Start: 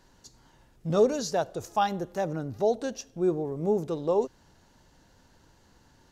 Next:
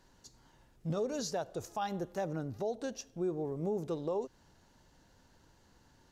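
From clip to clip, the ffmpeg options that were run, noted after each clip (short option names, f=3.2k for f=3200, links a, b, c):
-af "alimiter=limit=-22dB:level=0:latency=1:release=155,volume=-4.5dB"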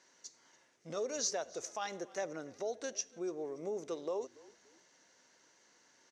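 -filter_complex "[0:a]highpass=420,equalizer=f=840:t=q:w=4:g=-6,equalizer=f=2.1k:t=q:w=4:g=8,equalizer=f=6k:t=q:w=4:g=10,lowpass=f=9.2k:w=0.5412,lowpass=f=9.2k:w=1.3066,asplit=3[a][b][c];[b]adelay=287,afreqshift=-42,volume=-22dB[d];[c]adelay=574,afreqshift=-84,volume=-32.2dB[e];[a][d][e]amix=inputs=3:normalize=0"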